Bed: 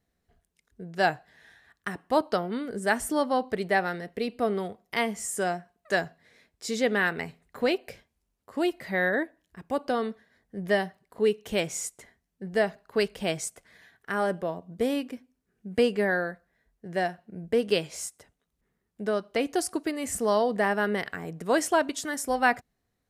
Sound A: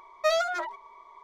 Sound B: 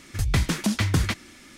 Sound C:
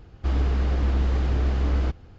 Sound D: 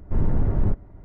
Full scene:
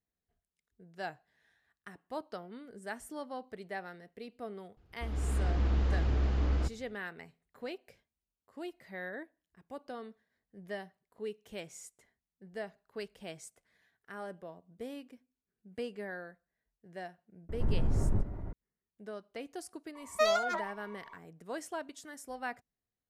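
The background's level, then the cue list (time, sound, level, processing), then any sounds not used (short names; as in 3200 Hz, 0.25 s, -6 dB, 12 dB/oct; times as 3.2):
bed -16 dB
4.77 add C -17 dB + AGC gain up to 12.5 dB
17.49 add D -9.5 dB + fast leveller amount 50%
19.95 add A -3 dB
not used: B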